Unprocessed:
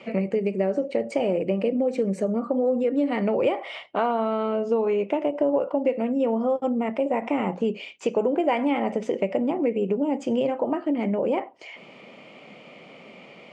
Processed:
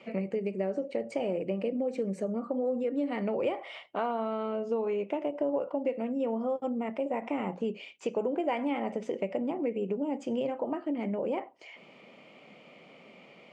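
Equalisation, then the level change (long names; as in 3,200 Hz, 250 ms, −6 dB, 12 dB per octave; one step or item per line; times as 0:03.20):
mains-hum notches 60/120 Hz
−7.5 dB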